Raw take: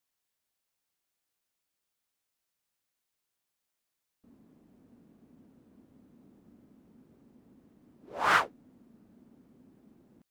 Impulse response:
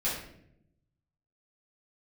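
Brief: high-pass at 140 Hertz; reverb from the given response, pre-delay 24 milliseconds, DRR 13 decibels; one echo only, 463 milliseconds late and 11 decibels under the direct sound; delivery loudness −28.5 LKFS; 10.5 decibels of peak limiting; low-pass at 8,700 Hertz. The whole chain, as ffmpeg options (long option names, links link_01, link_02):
-filter_complex "[0:a]highpass=140,lowpass=8700,alimiter=limit=-21.5dB:level=0:latency=1,aecho=1:1:463:0.282,asplit=2[link_01][link_02];[1:a]atrim=start_sample=2205,adelay=24[link_03];[link_02][link_03]afir=irnorm=-1:irlink=0,volume=-20.5dB[link_04];[link_01][link_04]amix=inputs=2:normalize=0,volume=7.5dB"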